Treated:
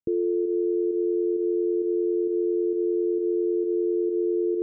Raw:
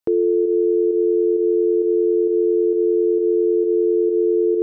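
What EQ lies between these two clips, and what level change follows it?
Gaussian low-pass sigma 23 samples; 0.0 dB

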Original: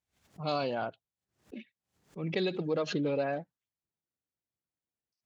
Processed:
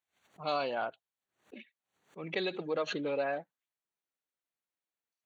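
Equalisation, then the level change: high-pass 900 Hz 6 dB/octave; Butterworth band-stop 5.1 kHz, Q 5; treble shelf 4.3 kHz -10.5 dB; +4.5 dB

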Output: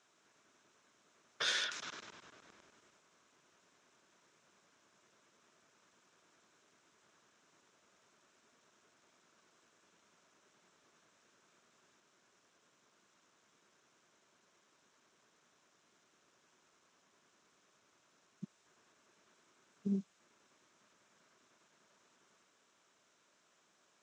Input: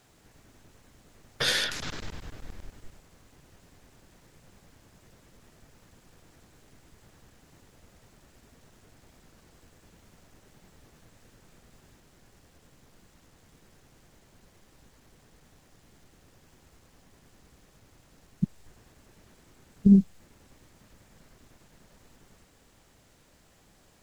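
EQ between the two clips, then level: cabinet simulation 270–6400 Hz, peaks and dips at 280 Hz -4 dB, 500 Hz -7 dB, 790 Hz -9 dB, 1.9 kHz -6 dB, 4.6 kHz -9 dB; bass shelf 420 Hz -12 dB; peaking EQ 2.9 kHz -5 dB 0.91 oct; -2.0 dB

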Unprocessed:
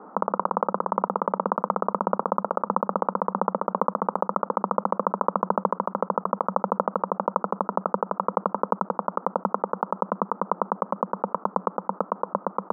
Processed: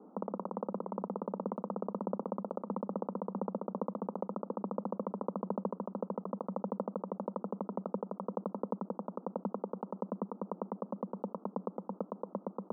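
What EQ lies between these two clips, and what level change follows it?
ladder band-pass 280 Hz, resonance 25%; +4.5 dB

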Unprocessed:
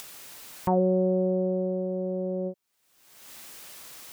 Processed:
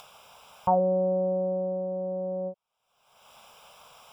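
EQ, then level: Savitzky-Golay filter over 25 samples; bass shelf 330 Hz -9.5 dB; static phaser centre 780 Hz, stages 4; +6.5 dB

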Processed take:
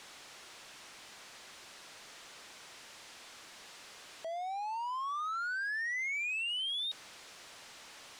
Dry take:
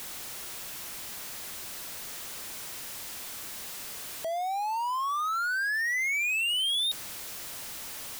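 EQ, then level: distance through air 83 m; bass shelf 220 Hz -11.5 dB; -6.0 dB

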